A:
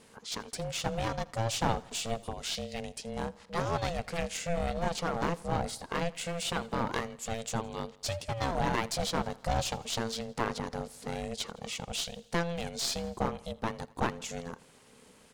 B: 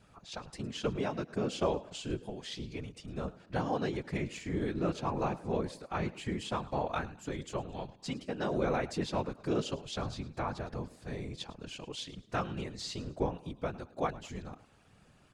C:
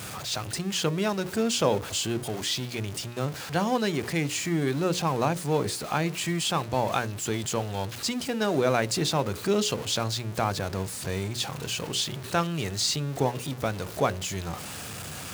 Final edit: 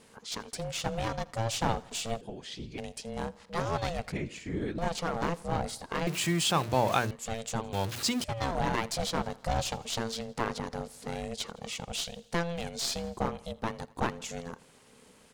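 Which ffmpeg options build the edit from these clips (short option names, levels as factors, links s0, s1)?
-filter_complex "[1:a]asplit=2[s0][s1];[2:a]asplit=2[s2][s3];[0:a]asplit=5[s4][s5][s6][s7][s8];[s4]atrim=end=2.212[s9];[s0]atrim=start=2.208:end=2.782[s10];[s5]atrim=start=2.778:end=4.122[s11];[s1]atrim=start=4.118:end=4.782[s12];[s6]atrim=start=4.778:end=6.072[s13];[s2]atrim=start=6.068:end=7.112[s14];[s7]atrim=start=7.108:end=7.732[s15];[s3]atrim=start=7.728:end=8.242[s16];[s8]atrim=start=8.238[s17];[s9][s10]acrossfade=d=0.004:c1=hsin:c2=hsin[s18];[s18][s11]acrossfade=d=0.004:c1=hsin:c2=hsin[s19];[s19][s12]acrossfade=d=0.004:c1=hsin:c2=hsin[s20];[s20][s13]acrossfade=d=0.004:c1=hsin:c2=hsin[s21];[s21][s14]acrossfade=d=0.004:c1=hsin:c2=hsin[s22];[s22][s15]acrossfade=d=0.004:c1=hsin:c2=hsin[s23];[s23][s16]acrossfade=d=0.004:c1=hsin:c2=hsin[s24];[s24][s17]acrossfade=d=0.004:c1=hsin:c2=hsin"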